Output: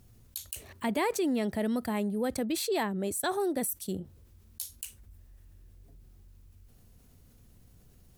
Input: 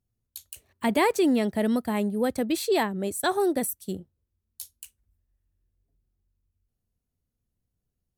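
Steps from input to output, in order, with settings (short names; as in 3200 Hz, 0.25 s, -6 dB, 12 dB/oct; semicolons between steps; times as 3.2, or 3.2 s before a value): fast leveller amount 50%; gain -7.5 dB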